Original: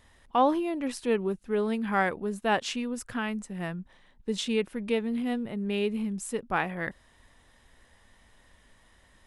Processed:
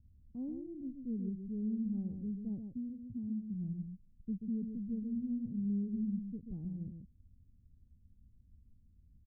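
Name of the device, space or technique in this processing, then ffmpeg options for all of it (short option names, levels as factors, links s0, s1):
the neighbour's flat through the wall: -filter_complex "[0:a]asettb=1/sr,asplit=3[s0][s1][s2];[s0]atrim=end=2.764[s3];[s1]atrim=start=2.76:end=3.54,asetpts=PTS-STARTPTS,afade=t=in:d=0.004:c=qsin,afade=t=out:st=0.776:d=0.004:c=qsin,highpass=55[s4];[s2]atrim=start=3.536[s5];[s3][s4]acrossfade=d=0.004:c1=hsin:c2=qsin[s6];[s6][s5]acrossfade=d=0.004:c1=qsin:c2=hsin,lowpass=f=220:w=0.5412,lowpass=f=220:w=1.3066,equalizer=f=82:t=o:w=0.96:g=6.5,aecho=1:1:134:0.473,volume=0.708"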